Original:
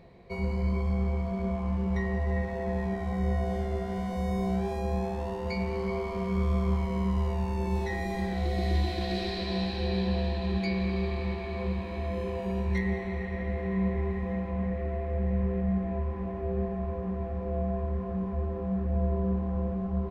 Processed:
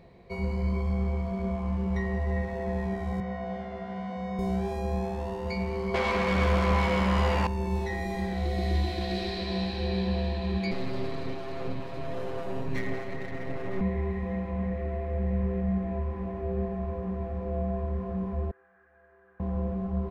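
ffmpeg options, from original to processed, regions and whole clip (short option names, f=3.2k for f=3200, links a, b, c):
-filter_complex "[0:a]asettb=1/sr,asplit=3[a][b][c];[a]atrim=end=3.204[d];[b]atrim=start=3.2:end=4.39,asetpts=PTS-STARTPTS,afade=t=in:d=0.004:c=qsin,afade=t=out:st=1.186:d=0.004:c=qsin,highpass=170,lowpass=3.3k,equalizer=f=360:t=o:w=0.37:g=-14[e];[c]atrim=start=4.386[f];[d][e]acrossfade=d=0.004:c1=hsin:c2=qsin[g];[g][f]acrossfade=d=0.004:c1=qsin:c2=hsin,asettb=1/sr,asplit=3[h][i][j];[h]atrim=end=5.944[k];[i]atrim=start=5.94:end=7.47,asetpts=PTS-STARTPTS,afade=t=in:d=0.004:c=qsin,afade=t=out:st=1.526:d=0.004:c=qsin,asplit=2[l][m];[m]highpass=f=720:p=1,volume=25dB,asoftclip=type=tanh:threshold=-17dB[n];[l][n]amix=inputs=2:normalize=0,lowpass=f=3.2k:p=1,volume=-6dB,asplit=2[o][p];[p]adelay=14,volume=-3dB[q];[o][q]amix=inputs=2:normalize=0,atrim=end_sample=67473[r];[j]atrim=start=7.466[s];[k][r]acrossfade=d=0.004:c1=hsin:c2=qsin[t];[t][s]acrossfade=d=0.004:c1=qsin:c2=hsin,asettb=1/sr,asplit=3[u][v][w];[u]atrim=end=10.714[x];[v]atrim=start=10.71:end=13.81,asetpts=PTS-STARTPTS,afade=t=in:d=0.004:c=qsin,afade=t=out:st=3.096:d=0.004:c=qsin,bandreject=f=2.3k:w=12,aeval=exprs='max(val(0),0)':c=same,aecho=1:1:7.4:0.9,atrim=end_sample=136710[y];[w]atrim=start=13.806[z];[x][y]acrossfade=d=0.004:c1=hsin:c2=qsin[aa];[aa][z]acrossfade=d=0.004:c1=qsin:c2=hsin,asettb=1/sr,asplit=3[ab][ac][ad];[ab]atrim=end=18.514[ae];[ac]atrim=start=18.51:end=19.4,asetpts=PTS-STARTPTS,afade=t=in:d=0.004:c=qsin,afade=t=out:st=0.886:d=0.004:c=qsin,bandpass=f=1.6k:t=q:w=8.5,aecho=1:1:2.5:0.53,atrim=end_sample=39249[af];[ad]atrim=start=19.396[ag];[ae][af]acrossfade=d=0.004:c1=hsin:c2=qsin[ah];[ah][ag]acrossfade=d=0.004:c1=qsin:c2=hsin"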